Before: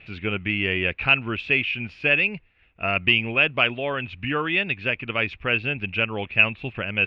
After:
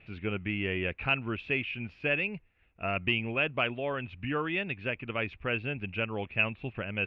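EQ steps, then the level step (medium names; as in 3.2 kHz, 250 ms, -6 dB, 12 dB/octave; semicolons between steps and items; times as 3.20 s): treble shelf 2.3 kHz -10 dB; -5.0 dB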